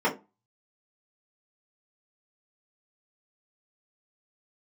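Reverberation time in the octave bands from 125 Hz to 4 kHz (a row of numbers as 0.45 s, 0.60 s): 0.35 s, 0.30 s, 0.25 s, 0.30 s, 0.20 s, 0.15 s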